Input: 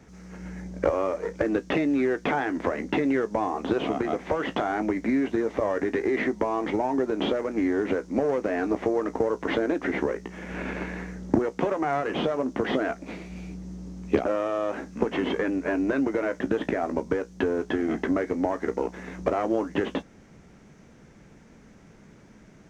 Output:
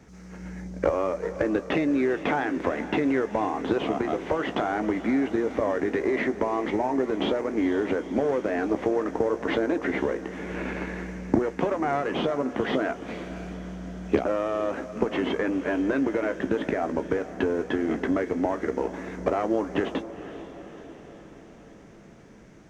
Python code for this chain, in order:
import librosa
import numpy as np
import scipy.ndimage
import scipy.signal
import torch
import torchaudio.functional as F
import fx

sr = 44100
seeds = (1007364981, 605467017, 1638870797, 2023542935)

y = fx.echo_diffused(x, sr, ms=474, feedback_pct=60, wet_db=-13.5)